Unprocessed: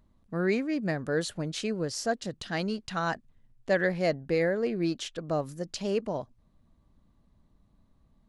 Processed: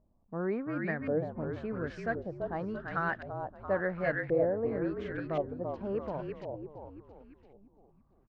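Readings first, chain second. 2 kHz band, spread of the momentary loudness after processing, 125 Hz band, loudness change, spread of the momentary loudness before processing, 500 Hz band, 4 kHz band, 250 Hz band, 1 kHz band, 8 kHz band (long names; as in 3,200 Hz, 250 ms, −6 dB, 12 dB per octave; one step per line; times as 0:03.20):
−3.0 dB, 11 LU, −3.5 dB, −4.0 dB, 9 LU, −2.5 dB, below −20 dB, −4.5 dB, −1.5 dB, below −30 dB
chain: echo with shifted repeats 338 ms, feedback 54%, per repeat −39 Hz, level −5.5 dB
auto-filter low-pass saw up 0.93 Hz 630–2,100 Hz
level −6.5 dB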